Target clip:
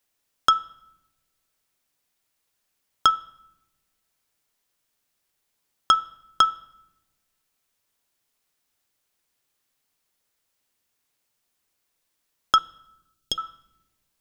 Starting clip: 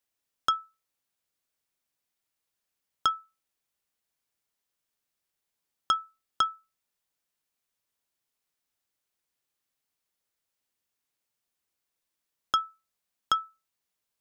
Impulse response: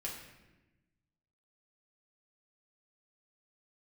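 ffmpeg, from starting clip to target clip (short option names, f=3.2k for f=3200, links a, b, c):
-filter_complex "[0:a]bandreject=f=166.3:t=h:w=4,bandreject=f=332.6:t=h:w=4,bandreject=f=498.9:t=h:w=4,bandreject=f=665.2:t=h:w=4,bandreject=f=831.5:t=h:w=4,bandreject=f=997.8:t=h:w=4,bandreject=f=1.1641k:t=h:w=4,bandreject=f=1.3304k:t=h:w=4,bandreject=f=1.4967k:t=h:w=4,bandreject=f=1.663k:t=h:w=4,bandreject=f=1.8293k:t=h:w=4,bandreject=f=1.9956k:t=h:w=4,bandreject=f=2.1619k:t=h:w=4,bandreject=f=2.3282k:t=h:w=4,bandreject=f=2.4945k:t=h:w=4,bandreject=f=2.6608k:t=h:w=4,bandreject=f=2.8271k:t=h:w=4,bandreject=f=2.9934k:t=h:w=4,bandreject=f=3.1597k:t=h:w=4,bandreject=f=3.326k:t=h:w=4,bandreject=f=3.4923k:t=h:w=4,bandreject=f=3.6586k:t=h:w=4,bandreject=f=3.8249k:t=h:w=4,bandreject=f=3.9912k:t=h:w=4,bandreject=f=4.1575k:t=h:w=4,asettb=1/sr,asplit=3[a][b][c];[a]atrim=end=12.584[d];[b]atrim=start=12.58:end=13.38,asetpts=PTS-STARTPTS,afade=t=in:d=0.004:c=qsin,afade=t=out:st=0.796:d=0.004:c=qsin,asuperstop=centerf=1200:order=4:qfactor=0.52[e];[c]atrim=start=13.376[f];[d][e]acrossfade=d=0.004:c1=hsin:c2=qsin[g];[g][f]acrossfade=d=0.004:c1=qsin:c2=hsin,asplit=2[h][i];[1:a]atrim=start_sample=2205,lowshelf=f=67:g=11.5[j];[i][j]afir=irnorm=-1:irlink=0,volume=-18dB[k];[h][k]amix=inputs=2:normalize=0,volume=7.5dB"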